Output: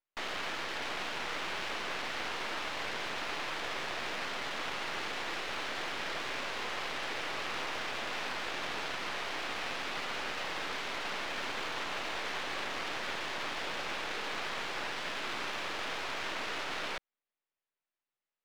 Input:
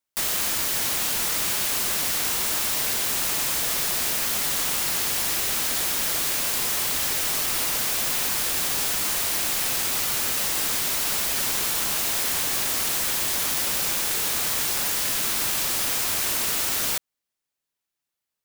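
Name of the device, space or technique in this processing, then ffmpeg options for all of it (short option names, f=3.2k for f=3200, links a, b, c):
crystal radio: -af "highpass=310,lowpass=2.9k,lowpass=4.4k,aeval=exprs='if(lt(val(0),0),0.251*val(0),val(0))':c=same"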